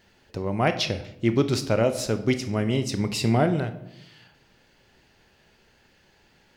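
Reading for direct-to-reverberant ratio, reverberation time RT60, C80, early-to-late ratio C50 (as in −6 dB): 9.0 dB, 0.80 s, 15.0 dB, 12.0 dB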